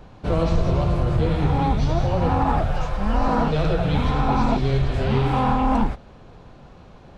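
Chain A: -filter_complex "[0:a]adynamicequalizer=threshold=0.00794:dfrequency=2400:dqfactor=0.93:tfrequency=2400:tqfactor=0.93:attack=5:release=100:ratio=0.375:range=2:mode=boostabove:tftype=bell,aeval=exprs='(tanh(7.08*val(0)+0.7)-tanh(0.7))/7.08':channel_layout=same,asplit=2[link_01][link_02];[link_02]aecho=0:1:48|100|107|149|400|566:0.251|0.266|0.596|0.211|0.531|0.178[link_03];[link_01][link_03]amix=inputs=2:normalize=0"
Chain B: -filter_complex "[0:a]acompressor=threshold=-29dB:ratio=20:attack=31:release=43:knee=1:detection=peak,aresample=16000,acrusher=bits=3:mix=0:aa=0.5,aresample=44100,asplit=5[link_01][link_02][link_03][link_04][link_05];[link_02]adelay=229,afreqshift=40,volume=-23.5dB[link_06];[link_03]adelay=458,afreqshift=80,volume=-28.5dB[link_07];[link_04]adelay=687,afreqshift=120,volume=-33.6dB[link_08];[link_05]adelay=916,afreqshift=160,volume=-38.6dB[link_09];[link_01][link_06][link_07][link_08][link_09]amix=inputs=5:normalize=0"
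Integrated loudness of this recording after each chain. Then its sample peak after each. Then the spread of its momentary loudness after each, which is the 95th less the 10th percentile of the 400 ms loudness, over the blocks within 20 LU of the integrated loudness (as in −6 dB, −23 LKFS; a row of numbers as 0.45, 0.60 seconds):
−23.5, −30.5 LKFS; −7.0, −16.5 dBFS; 4, 2 LU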